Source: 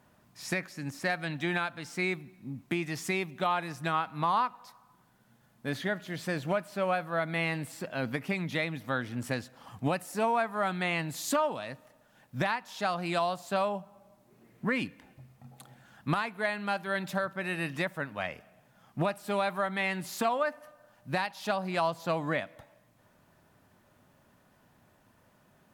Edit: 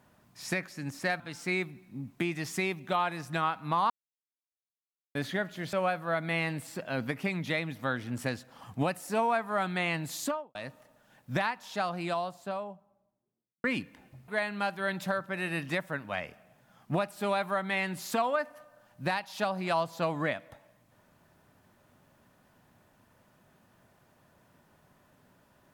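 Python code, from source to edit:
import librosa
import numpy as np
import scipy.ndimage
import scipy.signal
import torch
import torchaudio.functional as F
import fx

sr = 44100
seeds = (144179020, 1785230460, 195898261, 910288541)

y = fx.studio_fade_out(x, sr, start_s=11.2, length_s=0.4)
y = fx.studio_fade_out(y, sr, start_s=12.5, length_s=2.19)
y = fx.edit(y, sr, fx.cut(start_s=1.2, length_s=0.51),
    fx.silence(start_s=4.41, length_s=1.25),
    fx.cut(start_s=6.24, length_s=0.54),
    fx.cut(start_s=15.33, length_s=1.02), tone=tone)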